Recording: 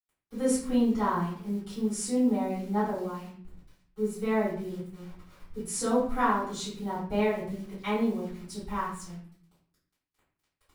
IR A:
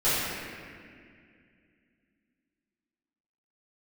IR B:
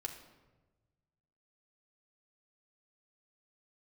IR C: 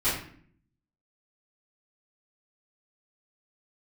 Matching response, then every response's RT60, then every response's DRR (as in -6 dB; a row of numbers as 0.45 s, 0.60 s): C; 2.2 s, 1.2 s, 0.55 s; -15.0 dB, 0.5 dB, -15.0 dB